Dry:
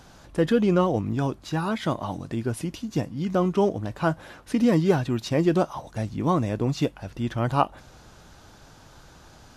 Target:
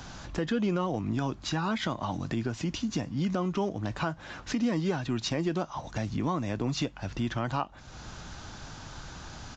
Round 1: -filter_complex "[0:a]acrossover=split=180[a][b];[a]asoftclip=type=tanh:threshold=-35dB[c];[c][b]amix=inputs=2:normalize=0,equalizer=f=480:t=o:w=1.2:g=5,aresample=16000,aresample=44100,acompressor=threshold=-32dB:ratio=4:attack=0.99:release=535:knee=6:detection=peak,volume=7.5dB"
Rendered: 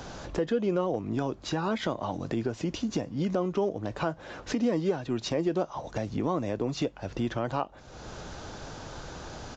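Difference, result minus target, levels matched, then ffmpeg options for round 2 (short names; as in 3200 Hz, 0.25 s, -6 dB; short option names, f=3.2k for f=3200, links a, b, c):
500 Hz band +4.0 dB
-filter_complex "[0:a]acrossover=split=180[a][b];[a]asoftclip=type=tanh:threshold=-35dB[c];[c][b]amix=inputs=2:normalize=0,equalizer=f=480:t=o:w=1.2:g=-6,aresample=16000,aresample=44100,acompressor=threshold=-32dB:ratio=4:attack=0.99:release=535:knee=6:detection=peak,volume=7.5dB"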